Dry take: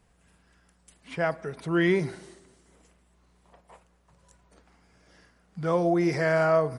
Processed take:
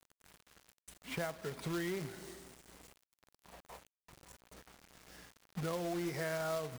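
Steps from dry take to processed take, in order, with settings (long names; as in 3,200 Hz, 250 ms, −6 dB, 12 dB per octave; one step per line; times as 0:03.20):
downward compressor 4 to 1, threshold −37 dBFS, peak gain reduction 16 dB
log-companded quantiser 4 bits
level −1 dB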